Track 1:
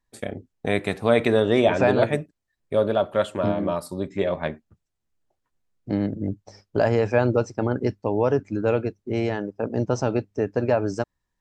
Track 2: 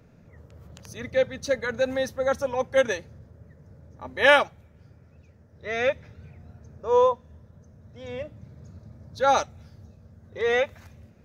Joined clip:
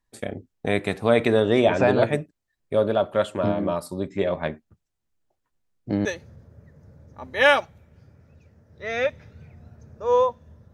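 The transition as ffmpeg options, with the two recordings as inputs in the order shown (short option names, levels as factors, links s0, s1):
-filter_complex "[0:a]apad=whole_dur=10.73,atrim=end=10.73,atrim=end=6.052[s0];[1:a]atrim=start=2.878:end=7.56[s1];[s0][s1]acrossfade=d=0.004:c1=hsin:c2=hsin"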